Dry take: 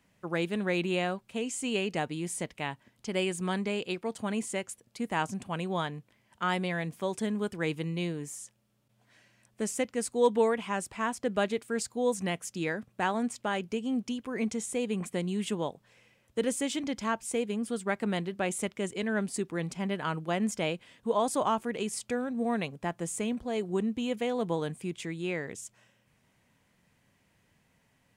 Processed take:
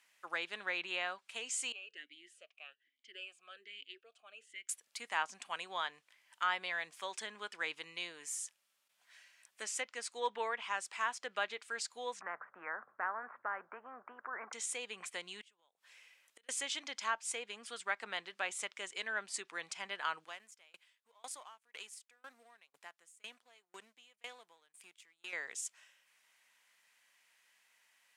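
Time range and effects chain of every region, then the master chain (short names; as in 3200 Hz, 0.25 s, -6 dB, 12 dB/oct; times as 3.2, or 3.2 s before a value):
1.72–4.69 bell 920 Hz -10.5 dB 1.2 oct + vowel sweep a-i 1.2 Hz
12.21–14.53 steep low-pass 1500 Hz 48 dB/oct + notches 50/100/150 Hz + spectral compressor 2:1
15.41–16.49 compressor 3:1, threshold -37 dBFS + flipped gate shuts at -32 dBFS, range -25 dB
20.24–25.33 G.711 law mismatch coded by A + compressor 1.5:1, threshold -42 dBFS + dB-ramp tremolo decaying 2 Hz, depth 29 dB
whole clip: treble ducked by the level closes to 3000 Hz, closed at -24.5 dBFS; HPF 1400 Hz 12 dB/oct; dynamic EQ 2400 Hz, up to -4 dB, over -47 dBFS, Q 1.1; gain +3 dB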